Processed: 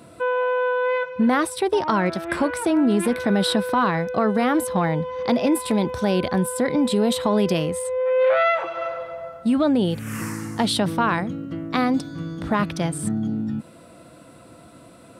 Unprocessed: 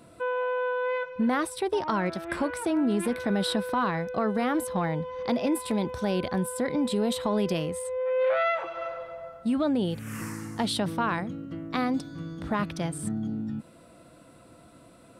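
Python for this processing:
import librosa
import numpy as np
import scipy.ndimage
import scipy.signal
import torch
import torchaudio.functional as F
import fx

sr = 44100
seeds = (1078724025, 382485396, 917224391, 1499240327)

y = scipy.signal.sosfilt(scipy.signal.butter(2, 58.0, 'highpass', fs=sr, output='sos'), x)
y = y * 10.0 ** (6.5 / 20.0)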